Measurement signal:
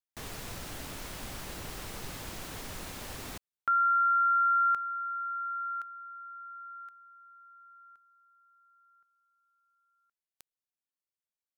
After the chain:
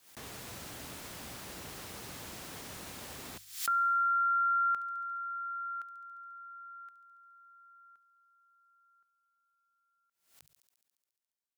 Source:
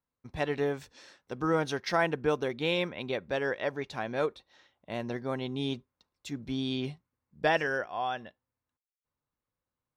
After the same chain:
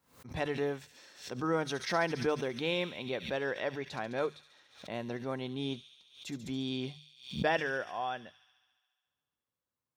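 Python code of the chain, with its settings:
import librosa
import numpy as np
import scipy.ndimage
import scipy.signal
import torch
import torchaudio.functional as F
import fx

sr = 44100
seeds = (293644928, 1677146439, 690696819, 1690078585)

y = scipy.signal.sosfilt(scipy.signal.butter(2, 72.0, 'highpass', fs=sr, output='sos'), x)
y = fx.hum_notches(y, sr, base_hz=50, count=3)
y = fx.echo_wet_highpass(y, sr, ms=70, feedback_pct=76, hz=4100.0, wet_db=-7)
y = fx.pre_swell(y, sr, db_per_s=120.0)
y = F.gain(torch.from_numpy(y), -3.5).numpy()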